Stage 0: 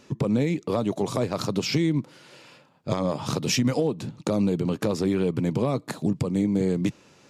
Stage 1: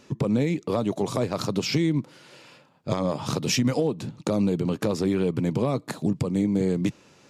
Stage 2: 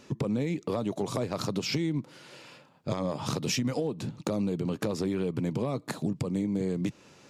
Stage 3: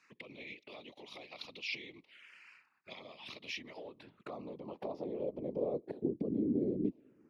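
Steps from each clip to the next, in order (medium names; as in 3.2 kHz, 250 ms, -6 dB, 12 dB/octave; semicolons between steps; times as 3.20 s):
no audible change
compression 2.5:1, threshold -28 dBFS, peak gain reduction 7 dB; saturation -13.5 dBFS, distortion -32 dB
touch-sensitive phaser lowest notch 530 Hz, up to 1.5 kHz, full sweep at -28.5 dBFS; whisper effect; band-pass sweep 2.4 kHz -> 320 Hz, 3.20–6.34 s; trim +1.5 dB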